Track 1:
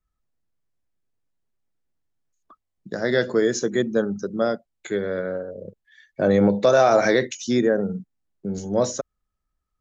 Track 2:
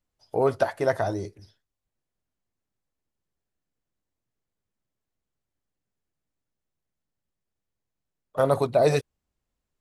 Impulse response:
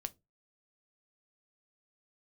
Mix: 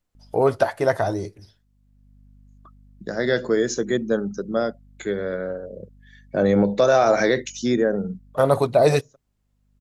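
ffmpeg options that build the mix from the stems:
-filter_complex "[0:a]aeval=exprs='val(0)+0.00355*(sin(2*PI*50*n/s)+sin(2*PI*2*50*n/s)/2+sin(2*PI*3*50*n/s)/3+sin(2*PI*4*50*n/s)/4+sin(2*PI*5*50*n/s)/5)':c=same,adelay=150,volume=-0.5dB[a];[1:a]volume=2.5dB,asplit=3[b][c][d];[c]volume=-13dB[e];[d]apad=whole_len=438990[f];[a][f]sidechaincompress=threshold=-49dB:ratio=10:attack=16:release=557[g];[2:a]atrim=start_sample=2205[h];[e][h]afir=irnorm=-1:irlink=0[i];[g][b][i]amix=inputs=3:normalize=0"

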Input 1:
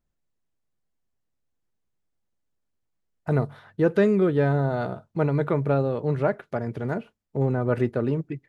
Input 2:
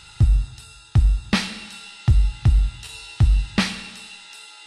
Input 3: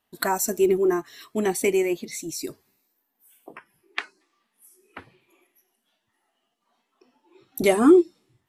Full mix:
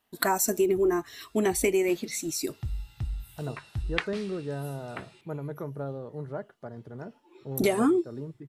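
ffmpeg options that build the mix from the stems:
-filter_complex "[0:a]equalizer=f=2.5k:w=2.7:g=-14.5,adelay=100,volume=-12.5dB[a];[1:a]adelay=550,volume=-16.5dB[b];[2:a]volume=1dB,asplit=2[c][d];[d]apad=whole_len=229824[e];[b][e]sidechaincompress=threshold=-30dB:ratio=8:attack=16:release=510[f];[a][f][c]amix=inputs=3:normalize=0,acompressor=threshold=-20dB:ratio=12"

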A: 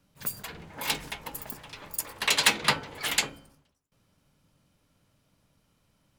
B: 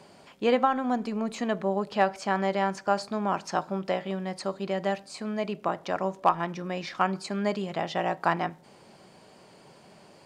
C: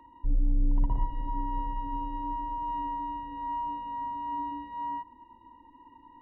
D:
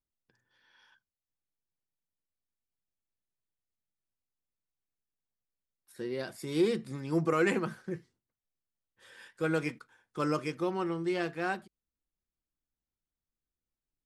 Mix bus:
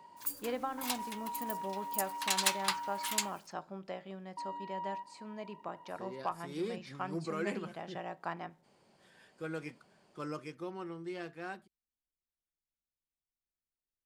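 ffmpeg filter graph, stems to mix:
-filter_complex "[0:a]lowshelf=f=700:t=q:w=3:g=-11.5,acrusher=bits=8:mix=0:aa=0.000001,bass=f=250:g=0,treble=f=4k:g=10,volume=-14dB[a];[1:a]volume=-14dB[b];[2:a]highpass=630,acompressor=threshold=-39dB:ratio=6,volume=-0.5dB,asplit=3[c][d][e];[c]atrim=end=3.31,asetpts=PTS-STARTPTS,afade=t=out:st=3.306:d=0.004:c=hsin[f];[d]atrim=start=3.31:end=4.37,asetpts=PTS-STARTPTS,volume=0[g];[e]atrim=start=4.37,asetpts=PTS-STARTPTS,afade=t=in:d=0.004:c=hsin[h];[f][g][h]concat=n=3:v=0:a=1[i];[3:a]volume=-10dB[j];[a][b][i][j]amix=inputs=4:normalize=0"

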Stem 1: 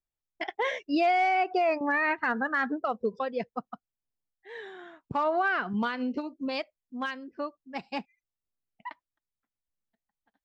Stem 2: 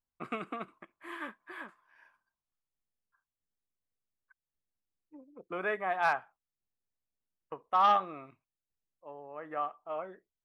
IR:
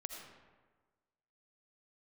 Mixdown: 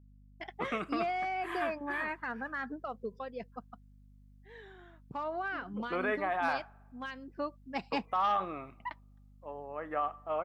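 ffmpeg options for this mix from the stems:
-filter_complex "[0:a]afade=t=in:st=7:d=0.61:silence=0.316228[a];[1:a]alimiter=level_in=2dB:limit=-24dB:level=0:latency=1:release=28,volume=-2dB,adelay=400,volume=3dB,asplit=2[b][c];[c]volume=-21dB[d];[2:a]atrim=start_sample=2205[e];[d][e]afir=irnorm=-1:irlink=0[f];[a][b][f]amix=inputs=3:normalize=0,aeval=exprs='val(0)+0.00141*(sin(2*PI*50*n/s)+sin(2*PI*2*50*n/s)/2+sin(2*PI*3*50*n/s)/3+sin(2*PI*4*50*n/s)/4+sin(2*PI*5*50*n/s)/5)':c=same"

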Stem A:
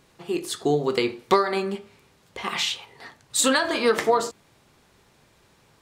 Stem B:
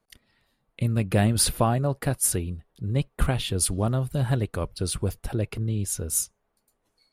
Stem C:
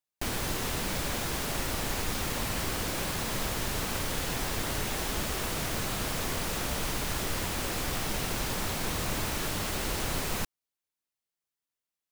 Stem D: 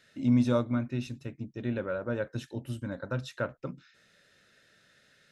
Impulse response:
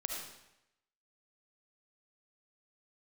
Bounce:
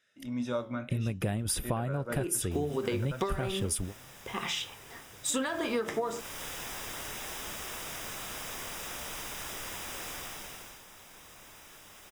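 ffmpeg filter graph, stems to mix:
-filter_complex "[0:a]lowshelf=f=380:g=7,adelay=1900,volume=-7.5dB[a];[1:a]adelay=100,volume=-2dB[b];[2:a]lowshelf=f=420:g=-11.5,adelay=2300,volume=-5dB,afade=t=in:st=6.03:d=0.39:silence=0.251189,afade=t=out:st=10.11:d=0.71:silence=0.237137[c];[3:a]flanger=delay=9.1:depth=6.2:regen=75:speed=0.63:shape=triangular,lowshelf=f=330:g=-10.5,dynaudnorm=f=180:g=5:m=9.5dB,volume=-4.5dB,asplit=2[d][e];[e]apad=whole_len=318809[f];[b][f]sidechaingate=range=-33dB:threshold=-57dB:ratio=16:detection=peak[g];[a][g][c][d]amix=inputs=4:normalize=0,asuperstop=centerf=4300:order=4:qfactor=6.2,acompressor=threshold=-27dB:ratio=10"

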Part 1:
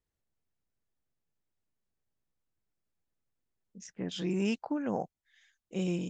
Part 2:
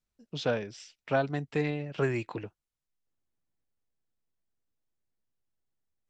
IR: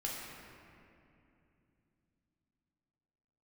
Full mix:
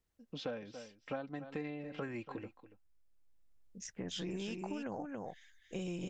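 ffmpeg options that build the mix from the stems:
-filter_complex "[0:a]asubboost=boost=7:cutoff=70,alimiter=level_in=5.5dB:limit=-24dB:level=0:latency=1:release=226,volume=-5.5dB,volume=2.5dB,asplit=2[a][b];[b]volume=-5dB[c];[1:a]lowpass=f=3.1k:p=1,aecho=1:1:3.8:0.52,volume=-5dB,asplit=3[d][e][f];[e]volume=-17.5dB[g];[f]apad=whole_len=268971[h];[a][h]sidechaincompress=threshold=-51dB:ratio=8:attack=16:release=1190[i];[c][g]amix=inputs=2:normalize=0,aecho=0:1:282:1[j];[i][d][j]amix=inputs=3:normalize=0,acompressor=threshold=-39dB:ratio=3"

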